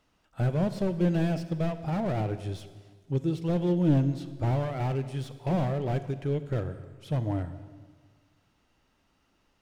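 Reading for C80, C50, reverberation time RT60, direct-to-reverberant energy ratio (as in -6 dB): 13.5 dB, 12.5 dB, 1.6 s, 11.5 dB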